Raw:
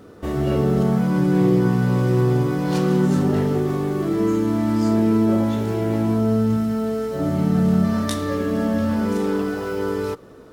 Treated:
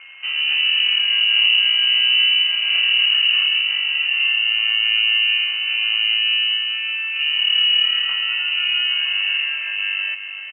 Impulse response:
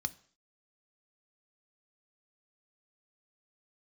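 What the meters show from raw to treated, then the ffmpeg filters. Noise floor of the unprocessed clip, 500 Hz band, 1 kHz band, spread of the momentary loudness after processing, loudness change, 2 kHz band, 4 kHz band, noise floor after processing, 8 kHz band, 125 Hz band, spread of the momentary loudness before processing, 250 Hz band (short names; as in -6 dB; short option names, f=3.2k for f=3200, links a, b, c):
-43 dBFS, under -35 dB, -12.5 dB, 8 LU, +5.0 dB, +17.5 dB, +28.5 dB, -31 dBFS, n/a, under -40 dB, 7 LU, under -40 dB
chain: -filter_complex "[0:a]acrusher=bits=8:dc=4:mix=0:aa=0.000001,asplit=2[a][b];[b]aecho=0:1:379:0.355[c];[a][c]amix=inputs=2:normalize=0,aeval=exprs='val(0)+0.00794*sin(2*PI*950*n/s)':c=same,lowpass=f=2.6k:t=q:w=0.5098,lowpass=f=2.6k:t=q:w=0.6013,lowpass=f=2.6k:t=q:w=0.9,lowpass=f=2.6k:t=q:w=2.563,afreqshift=-3100,equalizer=f=260:t=o:w=2.5:g=-11.5,volume=1dB"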